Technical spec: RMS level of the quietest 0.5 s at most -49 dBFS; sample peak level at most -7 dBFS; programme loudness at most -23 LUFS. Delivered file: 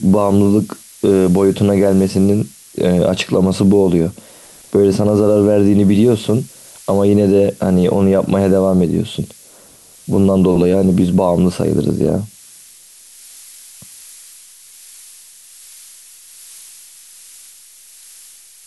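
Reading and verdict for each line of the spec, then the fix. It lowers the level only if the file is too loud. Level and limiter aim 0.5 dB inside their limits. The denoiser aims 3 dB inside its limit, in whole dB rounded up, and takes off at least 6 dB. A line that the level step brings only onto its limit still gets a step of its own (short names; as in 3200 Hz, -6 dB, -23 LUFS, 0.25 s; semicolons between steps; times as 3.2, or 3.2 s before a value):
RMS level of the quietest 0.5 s -44 dBFS: fail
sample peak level -3.0 dBFS: fail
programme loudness -14.0 LUFS: fail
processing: gain -9.5 dB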